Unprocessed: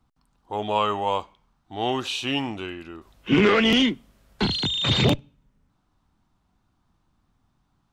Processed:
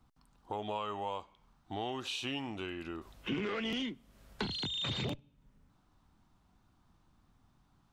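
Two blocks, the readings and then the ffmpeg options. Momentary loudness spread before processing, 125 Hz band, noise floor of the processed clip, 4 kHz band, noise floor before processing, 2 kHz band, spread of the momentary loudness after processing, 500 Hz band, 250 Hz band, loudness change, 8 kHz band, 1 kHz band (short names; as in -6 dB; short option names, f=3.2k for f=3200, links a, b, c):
17 LU, -15.5 dB, -70 dBFS, -13.5 dB, -70 dBFS, -15.0 dB, 9 LU, -15.0 dB, -15.5 dB, -15.0 dB, -12.0 dB, -13.5 dB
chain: -af "acompressor=threshold=-37dB:ratio=4"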